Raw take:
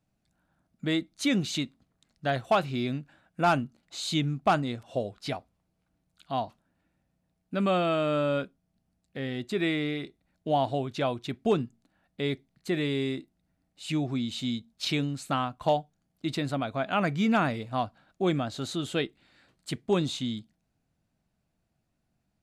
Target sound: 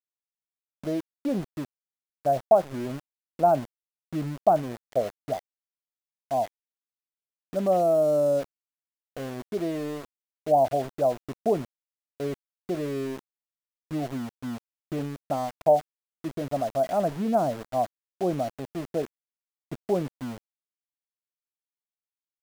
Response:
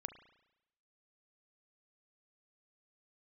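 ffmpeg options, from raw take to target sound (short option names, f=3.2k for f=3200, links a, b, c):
-af "lowpass=f=660:t=q:w=3.8,aeval=exprs='val(0)*gte(abs(val(0)),0.0251)':c=same,volume=-3.5dB"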